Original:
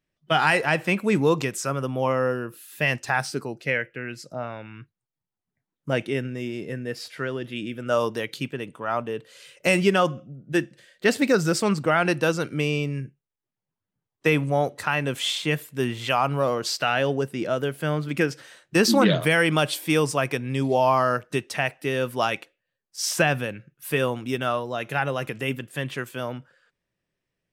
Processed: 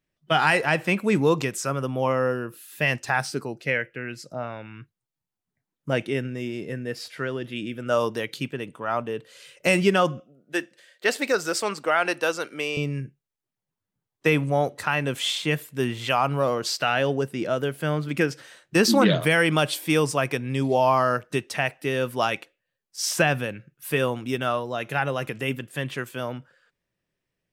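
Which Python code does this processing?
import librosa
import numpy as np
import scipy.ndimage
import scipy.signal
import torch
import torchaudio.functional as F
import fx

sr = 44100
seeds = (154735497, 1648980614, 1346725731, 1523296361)

y = fx.highpass(x, sr, hz=450.0, slope=12, at=(10.2, 12.77))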